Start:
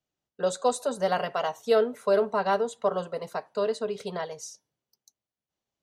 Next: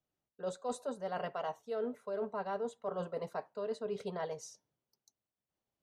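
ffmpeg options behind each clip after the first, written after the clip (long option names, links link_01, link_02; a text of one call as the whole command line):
ffmpeg -i in.wav -af "highshelf=frequency=2500:gain=-9.5,areverse,acompressor=threshold=-33dB:ratio=12,areverse,volume=-1dB" out.wav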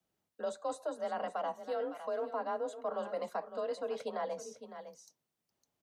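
ffmpeg -i in.wav -filter_complex "[0:a]afreqshift=34,aecho=1:1:557:0.188,acrossover=split=410|1300[link_01][link_02][link_03];[link_01]acompressor=threshold=-55dB:ratio=4[link_04];[link_02]acompressor=threshold=-40dB:ratio=4[link_05];[link_03]acompressor=threshold=-56dB:ratio=4[link_06];[link_04][link_05][link_06]amix=inputs=3:normalize=0,volume=5.5dB" out.wav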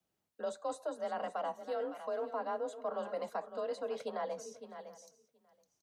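ffmpeg -i in.wav -af "aecho=1:1:727:0.0841,volume=-1dB" out.wav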